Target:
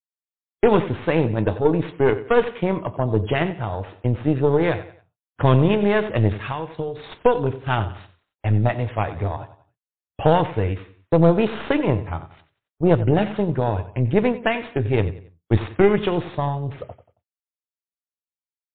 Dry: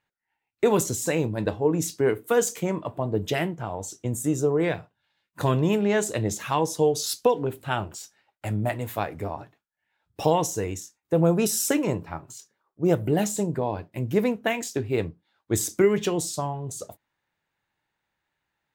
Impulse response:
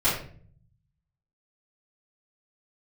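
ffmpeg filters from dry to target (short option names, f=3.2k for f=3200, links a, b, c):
-filter_complex "[0:a]agate=range=-48dB:threshold=-42dB:ratio=16:detection=peak,asubboost=boost=4.5:cutoff=92,asettb=1/sr,asplit=3[a][b][c];[a]atrim=end=6.434[d];[b]atrim=start=6.43:end=7.12,asetpts=PTS-STARTPTS,afade=t=in:d=0.004:c=qsin,afade=t=out:st=0.686:d=0.004:c=qsin,acompressor=threshold=-30dB:ratio=6[e];[c]atrim=start=7.116[f];[d][e]acrossfade=d=0.004:c1=hsin:c2=qsin[g];[g][f]acrossfade=d=0.004:c1=qsin:c2=hsin,asplit=2[h][i];[i]aecho=0:1:91|182|273:0.2|0.0718|0.0259[j];[h][j]amix=inputs=2:normalize=0,aeval=exprs='0.376*(cos(1*acos(clip(val(0)/0.376,-1,1)))-cos(1*PI/2))+0.0473*(cos(4*acos(clip(val(0)/0.376,-1,1)))-cos(4*PI/2))+0.00237*(cos(5*acos(clip(val(0)/0.376,-1,1)))-cos(5*PI/2))+0.00266*(cos(7*acos(clip(val(0)/0.376,-1,1)))-cos(7*PI/2))':c=same,asplit=2[k][l];[l]acrusher=samples=10:mix=1:aa=0.000001,volume=-12dB[m];[k][m]amix=inputs=2:normalize=0,volume=3.5dB" -ar 8000 -c:a libmp3lame -b:a 32k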